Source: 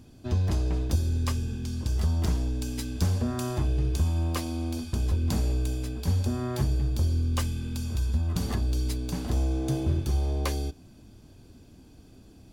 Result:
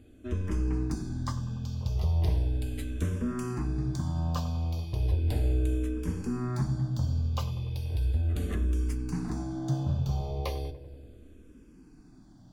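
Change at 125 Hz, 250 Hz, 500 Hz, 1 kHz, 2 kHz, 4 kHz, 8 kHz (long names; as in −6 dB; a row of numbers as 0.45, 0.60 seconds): −2.0, −2.0, −3.0, −2.5, −4.5, −7.0, −9.0 decibels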